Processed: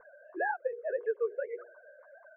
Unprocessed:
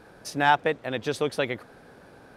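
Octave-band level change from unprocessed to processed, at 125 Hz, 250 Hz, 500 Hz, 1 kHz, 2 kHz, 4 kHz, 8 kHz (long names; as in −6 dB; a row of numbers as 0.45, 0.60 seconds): below −40 dB, −17.5 dB, −4.5 dB, −13.0 dB, −10.5 dB, below −40 dB, below −35 dB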